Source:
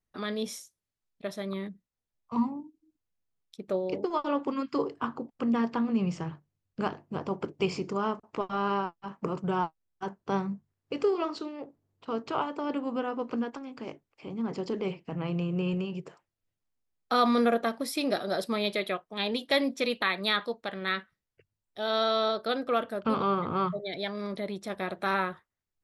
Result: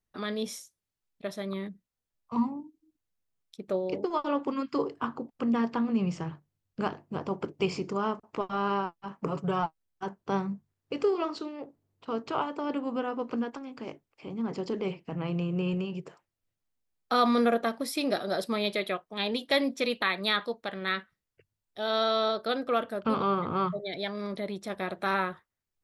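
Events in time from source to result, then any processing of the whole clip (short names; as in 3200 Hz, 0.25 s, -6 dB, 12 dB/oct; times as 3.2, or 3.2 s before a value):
9.26–9.66 comb 7.1 ms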